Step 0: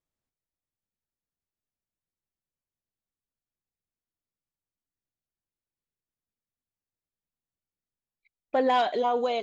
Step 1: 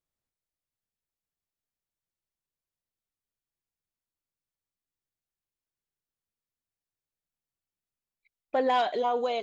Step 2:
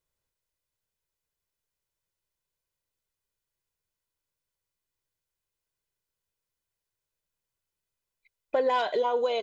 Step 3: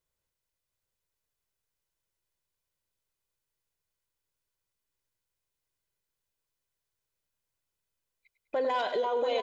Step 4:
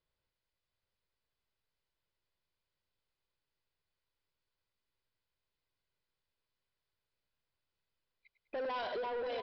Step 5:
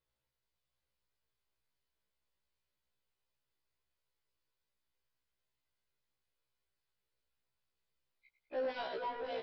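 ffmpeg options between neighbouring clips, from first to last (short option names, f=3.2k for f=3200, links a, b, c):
-af "equalizer=f=240:t=o:w=0.77:g=-2.5,volume=-1.5dB"
-af "aecho=1:1:2:0.45,acompressor=threshold=-30dB:ratio=2,volume=4dB"
-filter_complex "[0:a]asplit=2[a][b];[b]aecho=0:1:101|202|303|404|505:0.251|0.123|0.0603|0.0296|0.0145[c];[a][c]amix=inputs=2:normalize=0,alimiter=limit=-21.5dB:level=0:latency=1:release=15,asplit=2[d][e];[e]aecho=0:1:682:0.447[f];[d][f]amix=inputs=2:normalize=0,volume=-1dB"
-af "alimiter=level_in=2.5dB:limit=-24dB:level=0:latency=1:release=92,volume=-2.5dB,aresample=11025,asoftclip=type=tanh:threshold=-34.5dB,aresample=44100"
-af "afftfilt=real='re*1.73*eq(mod(b,3),0)':imag='im*1.73*eq(mod(b,3),0)':win_size=2048:overlap=0.75,volume=1dB"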